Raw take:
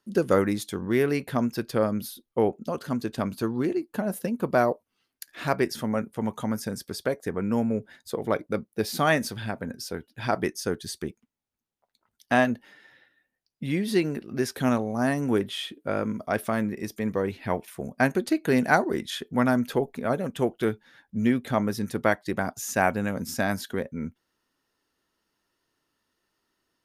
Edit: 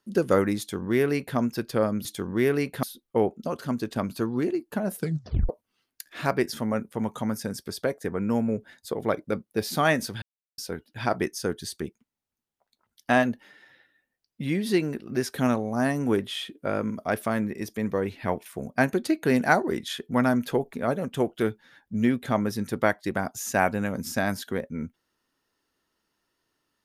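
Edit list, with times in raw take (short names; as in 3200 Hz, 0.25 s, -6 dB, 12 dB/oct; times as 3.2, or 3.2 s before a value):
0.59–1.37 copy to 2.05
4.19 tape stop 0.52 s
9.44–9.8 mute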